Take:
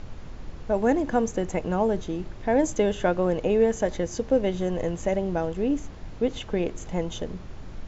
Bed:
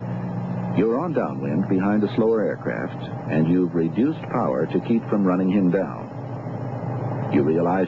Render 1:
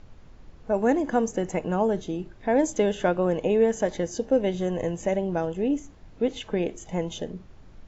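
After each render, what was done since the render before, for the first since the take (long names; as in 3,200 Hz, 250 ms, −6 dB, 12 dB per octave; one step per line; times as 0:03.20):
noise reduction from a noise print 10 dB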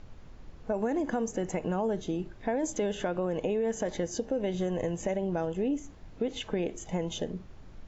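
brickwall limiter −17.5 dBFS, peak gain reduction 7 dB
downward compressor 3 to 1, threshold −27 dBFS, peak gain reduction 5 dB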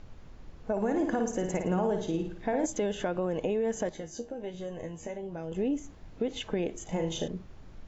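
0:00.71–0:02.66: flutter between parallel walls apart 9.5 metres, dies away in 0.55 s
0:03.89–0:05.52: tuned comb filter 79 Hz, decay 0.21 s, mix 90%
0:06.83–0:07.28: flutter between parallel walls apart 6.3 metres, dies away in 0.38 s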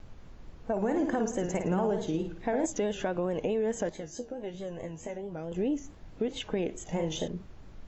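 pitch vibrato 4.6 Hz 78 cents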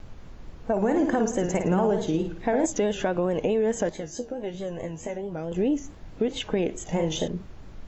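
level +5.5 dB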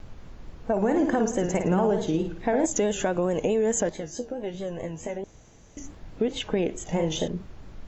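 0:02.71–0:03.80: parametric band 7,000 Hz +13 dB 0.3 octaves
0:05.24–0:05.77: fill with room tone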